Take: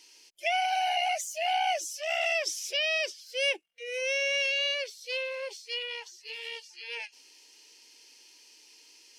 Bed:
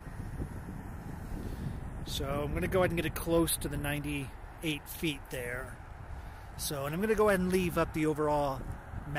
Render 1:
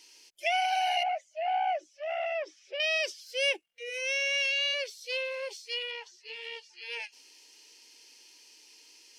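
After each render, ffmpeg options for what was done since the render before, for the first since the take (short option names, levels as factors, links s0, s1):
-filter_complex "[0:a]asettb=1/sr,asplit=3[s0][s1][s2];[s0]atrim=end=1.034[s3];[s1]atrim=start=1.03:end=2.8,asetpts=PTS-STARTPTS,afade=t=in:d=0.004:c=qsin,afade=t=out:st=1.766:d=0.004:c=qsin,lowpass=1500[s4];[s2]atrim=start=2.796[s5];[s3][s4]acrossfade=d=0.004:c1=hsin:c2=qsin[s6];[s6][s5]acrossfade=d=0.004:c1=qsin:c2=hsin,asplit=3[s7][s8][s9];[s7]afade=t=out:st=3.89:d=0.02[s10];[s8]highpass=680,afade=t=in:st=3.89:d=0.02,afade=t=out:st=4.72:d=0.02[s11];[s9]afade=t=in:st=4.72:d=0.02[s12];[s10][s11][s12]amix=inputs=3:normalize=0,asettb=1/sr,asplit=3[s13][s14][s15];[s13]atrim=end=5.914[s16];[s14]atrim=start=5.91:end=6.82,asetpts=PTS-STARTPTS,afade=t=in:d=0.004:c=qsin,afade=t=out:st=0.906:d=0.004:c=qsin,aemphasis=mode=reproduction:type=50fm[s17];[s15]atrim=start=6.816[s18];[s16][s17]acrossfade=d=0.004:c1=hsin:c2=qsin[s19];[s19][s18]acrossfade=d=0.004:c1=qsin:c2=hsin"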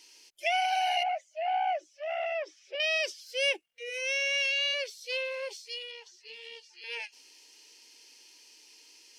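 -filter_complex "[0:a]asettb=1/sr,asplit=3[s0][s1][s2];[s0]atrim=end=1.034[s3];[s1]atrim=start=1.03:end=2.75,asetpts=PTS-STARTPTS,afade=t=in:d=0.004:c=qsin,afade=t=out:st=1.716:d=0.004:c=qsin,highpass=320[s4];[s2]atrim=start=2.746[s5];[s3][s4]acrossfade=d=0.004:c1=hsin:c2=qsin[s6];[s6][s5]acrossfade=d=0.004:c1=qsin:c2=hsin,asettb=1/sr,asplit=3[s7][s8][s9];[s7]atrim=end=5.644[s10];[s8]atrim=start=5.64:end=6.84,asetpts=PTS-STARTPTS,afade=t=in:d=0.004:c=qsin,afade=t=out:st=1.196:d=0.004:c=qsin,acrossover=split=440|3000[s11][s12][s13];[s12]acompressor=threshold=0.00158:ratio=3:attack=3.2:release=140:knee=2.83:detection=peak[s14];[s11][s14][s13]amix=inputs=3:normalize=0[s15];[s9]atrim=start=6.836[s16];[s10][s15]acrossfade=d=0.004:c1=hsin:c2=qsin[s17];[s17][s16]acrossfade=d=0.004:c1=qsin:c2=hsin"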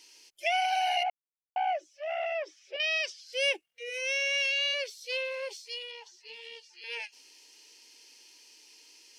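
-filter_complex "[0:a]asettb=1/sr,asplit=3[s0][s1][s2];[s0]atrim=end=2.764[s3];[s1]atrim=start=2.76:end=3.33,asetpts=PTS-STARTPTS,afade=t=in:d=0.004:c=qsin,afade=t=out:st=0.566:d=0.004:c=qsin,highpass=790,lowpass=6600[s4];[s2]atrim=start=3.326[s5];[s3][s4]acrossfade=d=0.004:c1=hsin:c2=qsin[s6];[s6][s5]acrossfade=d=0.004:c1=qsin:c2=hsin,asettb=1/sr,asplit=3[s7][s8][s9];[s7]atrim=end=5.594[s10];[s8]atrim=start=5.59:end=6.41,asetpts=PTS-STARTPTS,afade=t=in:d=0.004:c=qsin,afade=t=out:st=0.816:d=0.004:c=qsin,equalizer=f=870:t=o:w=0.38:g=9[s11];[s9]atrim=start=6.406[s12];[s10][s11]acrossfade=d=0.004:c1=hsin:c2=qsin[s13];[s13][s12]acrossfade=d=0.004:c1=qsin:c2=hsin,asplit=3[s14][s15][s16];[s14]atrim=end=1.1,asetpts=PTS-STARTPTS,afade=t=out:st=1.096:d=0.004:c=hsin[s17];[s15]atrim=start=1.1:end=1.56,asetpts=PTS-STARTPTS,volume=0[s18];[s16]atrim=start=1.56,asetpts=PTS-STARTPTS,afade=t=in:d=0.004:c=hsin[s19];[s17][s18][s19]concat=n=3:v=0:a=1"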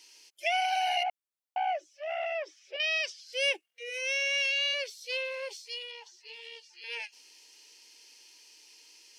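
-af "highpass=f=350:p=1"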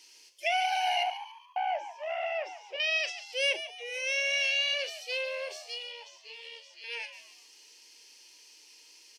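-filter_complex "[0:a]asplit=2[s0][s1];[s1]adelay=38,volume=0.224[s2];[s0][s2]amix=inputs=2:normalize=0,asplit=2[s3][s4];[s4]asplit=4[s5][s6][s7][s8];[s5]adelay=142,afreqshift=87,volume=0.251[s9];[s6]adelay=284,afreqshift=174,volume=0.0955[s10];[s7]adelay=426,afreqshift=261,volume=0.0363[s11];[s8]adelay=568,afreqshift=348,volume=0.0138[s12];[s9][s10][s11][s12]amix=inputs=4:normalize=0[s13];[s3][s13]amix=inputs=2:normalize=0"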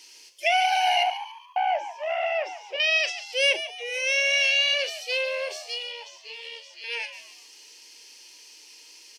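-af "volume=2.11"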